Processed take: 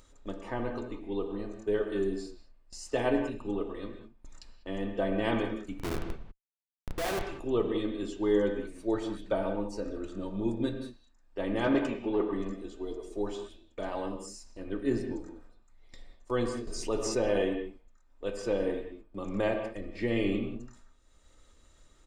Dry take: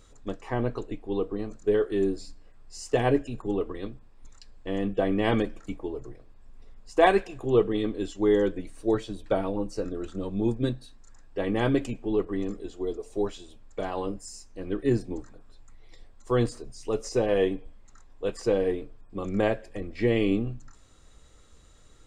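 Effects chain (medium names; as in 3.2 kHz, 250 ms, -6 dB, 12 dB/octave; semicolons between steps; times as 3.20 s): gate with hold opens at -38 dBFS; bass shelf 390 Hz -3 dB; upward compressor, threshold -39 dBFS; comb 3.3 ms, depth 33%; 5.79–7.27 s: Schmitt trigger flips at -34 dBFS; 11.64–12.33 s: overdrive pedal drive 17 dB, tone 1.3 kHz, clips at -12 dBFS; reverberation, pre-delay 3 ms, DRR 4.5 dB; 16.67–17.42 s: level flattener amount 50%; trim -4.5 dB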